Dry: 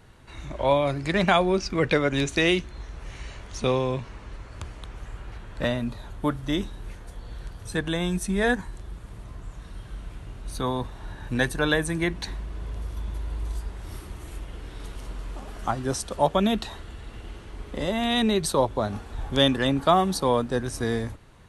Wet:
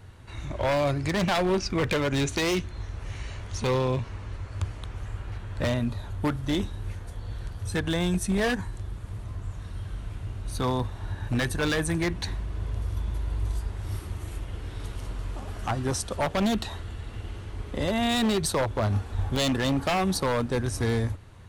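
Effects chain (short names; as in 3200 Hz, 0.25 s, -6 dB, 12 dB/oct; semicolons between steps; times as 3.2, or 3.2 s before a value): bell 95 Hz +14.5 dB 0.39 oct; in parallel at +2.5 dB: limiter -16 dBFS, peak gain reduction 9.5 dB; on the sum: wavefolder -11.5 dBFS; gain -7 dB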